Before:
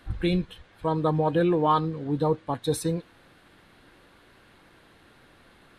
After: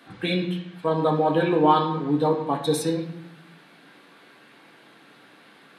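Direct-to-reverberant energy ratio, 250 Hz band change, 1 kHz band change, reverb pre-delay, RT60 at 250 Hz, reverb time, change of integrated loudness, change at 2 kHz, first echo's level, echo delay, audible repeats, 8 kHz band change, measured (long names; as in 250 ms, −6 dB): −0.5 dB, +2.5 dB, +4.0 dB, 4 ms, 1.1 s, 0.85 s, +3.0 dB, +5.5 dB, no echo audible, no echo audible, no echo audible, +2.5 dB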